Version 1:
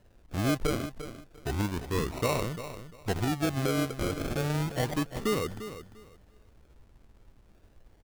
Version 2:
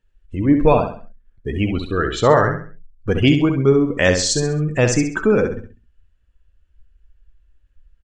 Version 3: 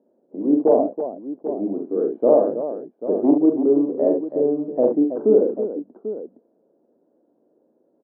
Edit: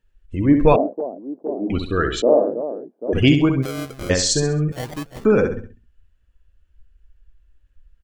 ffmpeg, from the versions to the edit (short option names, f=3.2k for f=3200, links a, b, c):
-filter_complex "[2:a]asplit=2[a][b];[0:a]asplit=2[c][d];[1:a]asplit=5[e][f][g][h][i];[e]atrim=end=0.762[j];[a]atrim=start=0.758:end=1.702[k];[f]atrim=start=1.698:end=2.222[l];[b]atrim=start=2.218:end=3.132[m];[g]atrim=start=3.128:end=3.64[n];[c]atrim=start=3.62:end=4.11[o];[h]atrim=start=4.09:end=4.722[p];[d]atrim=start=4.718:end=5.252[q];[i]atrim=start=5.248[r];[j][k]acrossfade=d=0.004:c1=hsin:c2=hsin[s];[s][l]acrossfade=d=0.004:c1=hsin:c2=hsin[t];[t][m]acrossfade=d=0.004:c1=hsin:c2=hsin[u];[u][n]acrossfade=d=0.004:c1=hsin:c2=hsin[v];[v][o]acrossfade=d=0.02:c1=tri:c2=tri[w];[w][p]acrossfade=d=0.02:c1=tri:c2=tri[x];[x][q]acrossfade=d=0.004:c1=hsin:c2=hsin[y];[y][r]acrossfade=d=0.004:c1=hsin:c2=hsin"